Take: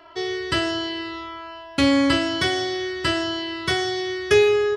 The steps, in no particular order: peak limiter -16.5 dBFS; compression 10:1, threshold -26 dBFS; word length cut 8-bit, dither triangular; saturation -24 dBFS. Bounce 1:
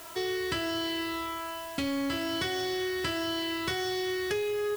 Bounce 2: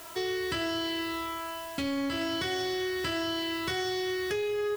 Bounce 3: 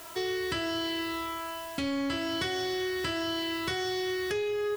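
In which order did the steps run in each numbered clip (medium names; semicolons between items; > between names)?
compression > word length cut > saturation > peak limiter; peak limiter > word length cut > compression > saturation; word length cut > compression > peak limiter > saturation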